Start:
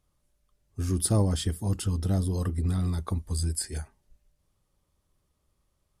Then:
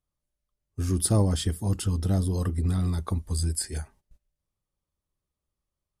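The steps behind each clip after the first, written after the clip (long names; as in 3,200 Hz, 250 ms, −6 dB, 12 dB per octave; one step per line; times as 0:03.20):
noise gate −55 dBFS, range −14 dB
level +1.5 dB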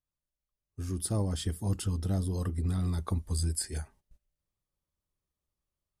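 speech leveller 0.5 s
level −5 dB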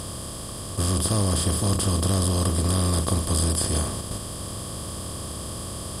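compressor on every frequency bin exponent 0.2
level +3 dB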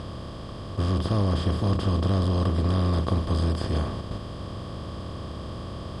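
high-frequency loss of the air 230 metres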